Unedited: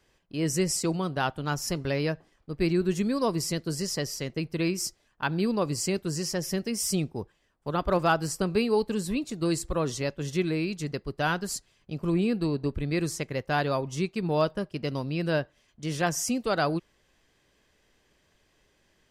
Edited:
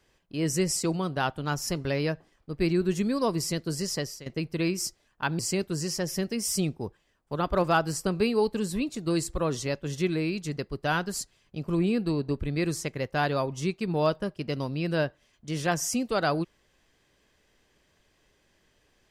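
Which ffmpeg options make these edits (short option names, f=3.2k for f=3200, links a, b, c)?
-filter_complex "[0:a]asplit=3[a][b][c];[a]atrim=end=4.26,asetpts=PTS-STARTPTS,afade=t=out:st=3.98:d=0.28:silence=0.16788[d];[b]atrim=start=4.26:end=5.392,asetpts=PTS-STARTPTS,afade=t=in:d=0.004:c=hsin:silence=0.16788[e];[c]atrim=start=5.738[f];[d][e]concat=n=2:v=0:a=1[g];[g][f]acrossfade=d=0.004:c1=hsin:c2=hsin"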